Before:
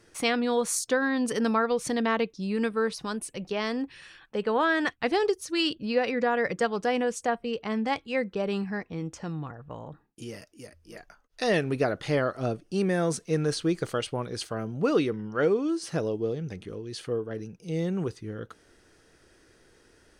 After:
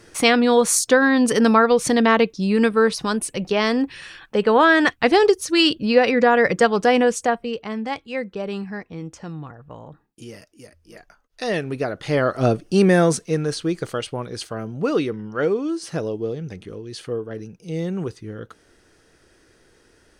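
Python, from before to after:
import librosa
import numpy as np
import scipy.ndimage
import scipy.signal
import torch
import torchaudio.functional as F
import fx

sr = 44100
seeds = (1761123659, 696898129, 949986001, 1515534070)

y = fx.gain(x, sr, db=fx.line((7.07, 10.0), (7.74, 1.0), (11.94, 1.0), (12.43, 11.0), (12.98, 11.0), (13.43, 3.0)))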